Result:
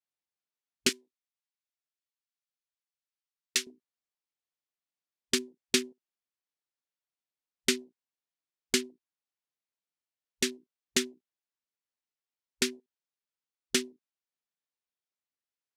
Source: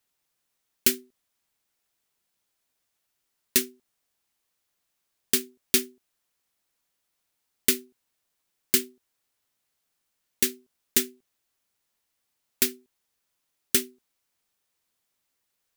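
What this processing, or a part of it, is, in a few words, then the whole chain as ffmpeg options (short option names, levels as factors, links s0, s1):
over-cleaned archive recording: -filter_complex "[0:a]highpass=130,lowpass=6600,afwtdn=0.00447,asettb=1/sr,asplit=3[s0][s1][s2];[s0]atrim=end=0.894[s3];[s1]atrim=start=0.89:end=3.67,asetpts=PTS-STARTPTS,afade=t=in:d=0.004:c=qsin,afade=t=out:st=2.776:d=0.004:c=qsin,highpass=f=1500:p=1[s4];[s2]atrim=start=3.666[s5];[s3][s4]acrossfade=d=0.004:c1=hsin:c2=qsin[s6];[s6][s5]acrossfade=d=0.004:c1=qsin:c2=hsin"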